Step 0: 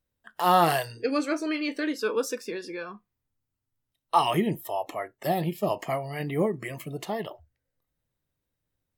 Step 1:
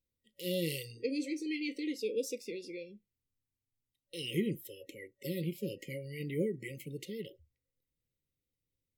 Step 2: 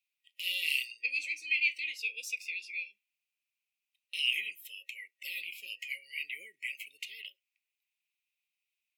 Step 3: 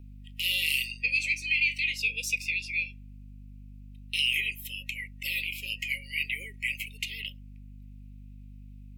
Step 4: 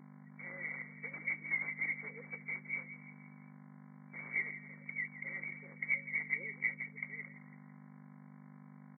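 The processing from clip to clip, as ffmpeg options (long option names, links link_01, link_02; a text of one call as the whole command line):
ffmpeg -i in.wav -af "afftfilt=real='re*(1-between(b*sr/4096,560,1900))':imag='im*(1-between(b*sr/4096,560,1900))':win_size=4096:overlap=0.75,volume=-7dB" out.wav
ffmpeg -i in.wav -af "highpass=frequency=2500:width_type=q:width=9.1" out.wav
ffmpeg -i in.wav -filter_complex "[0:a]aeval=exprs='val(0)+0.00224*(sin(2*PI*50*n/s)+sin(2*PI*2*50*n/s)/2+sin(2*PI*3*50*n/s)/3+sin(2*PI*4*50*n/s)/4+sin(2*PI*5*50*n/s)/5)':channel_layout=same,acrossover=split=450|6200[link_01][link_02][link_03];[link_02]alimiter=level_in=1.5dB:limit=-24dB:level=0:latency=1:release=44,volume=-1.5dB[link_04];[link_01][link_04][link_03]amix=inputs=3:normalize=0,volume=8dB" out.wav
ffmpeg -i in.wav -filter_complex "[0:a]acrusher=bits=4:mode=log:mix=0:aa=0.000001,asplit=5[link_01][link_02][link_03][link_04][link_05];[link_02]adelay=167,afreqshift=-32,volume=-14dB[link_06];[link_03]adelay=334,afreqshift=-64,volume=-20.9dB[link_07];[link_04]adelay=501,afreqshift=-96,volume=-27.9dB[link_08];[link_05]adelay=668,afreqshift=-128,volume=-34.8dB[link_09];[link_01][link_06][link_07][link_08][link_09]amix=inputs=5:normalize=0,afftfilt=real='re*between(b*sr/4096,140,2300)':imag='im*between(b*sr/4096,140,2300)':win_size=4096:overlap=0.75" out.wav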